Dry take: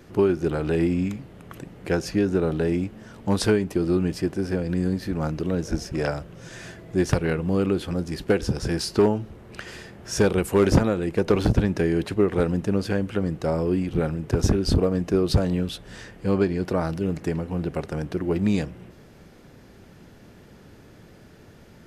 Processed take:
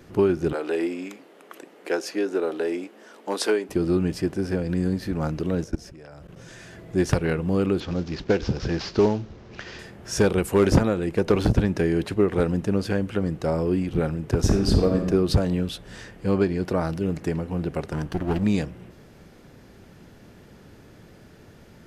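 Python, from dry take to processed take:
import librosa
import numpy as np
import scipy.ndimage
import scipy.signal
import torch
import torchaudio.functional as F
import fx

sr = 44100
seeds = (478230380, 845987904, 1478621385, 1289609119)

y = fx.highpass(x, sr, hz=320.0, slope=24, at=(0.53, 3.69))
y = fx.level_steps(y, sr, step_db=22, at=(5.64, 6.75))
y = fx.cvsd(y, sr, bps=32000, at=(7.8, 9.79))
y = fx.reverb_throw(y, sr, start_s=14.42, length_s=0.65, rt60_s=1.2, drr_db=4.5)
y = fx.lower_of_two(y, sr, delay_ms=0.66, at=(17.93, 18.44))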